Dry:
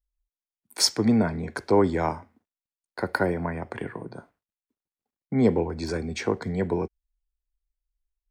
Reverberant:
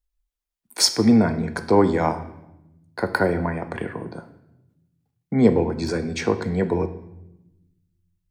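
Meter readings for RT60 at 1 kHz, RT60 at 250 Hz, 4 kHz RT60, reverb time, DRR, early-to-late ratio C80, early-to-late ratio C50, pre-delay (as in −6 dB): 0.80 s, 1.5 s, 0.75 s, 0.90 s, 9.0 dB, 15.0 dB, 13.0 dB, 4 ms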